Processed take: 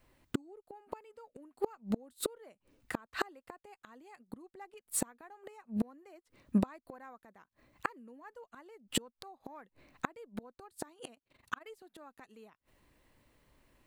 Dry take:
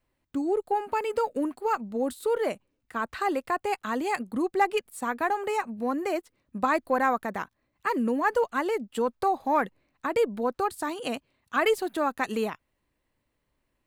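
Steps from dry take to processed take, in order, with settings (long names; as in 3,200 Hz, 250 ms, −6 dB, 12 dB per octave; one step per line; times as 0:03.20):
gate with flip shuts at −27 dBFS, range −36 dB
0:11.14–0:11.67: amplitude modulation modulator 23 Hz, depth 75%
level +9 dB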